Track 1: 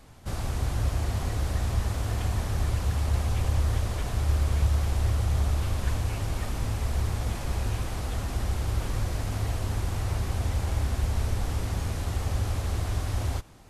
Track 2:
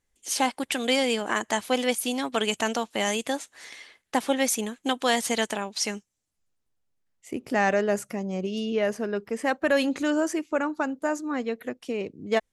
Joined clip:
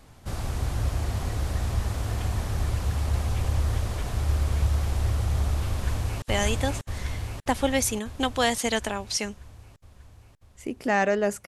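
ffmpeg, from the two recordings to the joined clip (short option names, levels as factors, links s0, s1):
-filter_complex "[0:a]apad=whole_dur=11.47,atrim=end=11.47,atrim=end=6.222[s0];[1:a]atrim=start=2.878:end=8.13[s1];[s0][s1]acrossfade=d=0.004:c1=hsin:c2=hsin,asplit=2[s2][s3];[s3]afade=t=in:st=5.69:d=0.01,afade=t=out:st=6.22:d=0.01,aecho=0:1:590|1180|1770|2360|2950|3540|4130|4720|5310|5900|6490:0.944061|0.61364|0.398866|0.259263|0.168521|0.109538|0.0712|0.04628|0.030082|0.0195533|0.0127096[s4];[s2][s4]amix=inputs=2:normalize=0"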